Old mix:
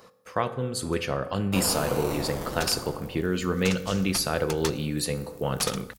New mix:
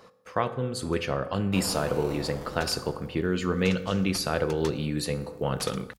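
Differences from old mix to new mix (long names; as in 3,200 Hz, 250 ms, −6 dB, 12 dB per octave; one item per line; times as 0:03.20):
first sound −6.0 dB
second sound −6.0 dB
master: add high-shelf EQ 7,900 Hz −10 dB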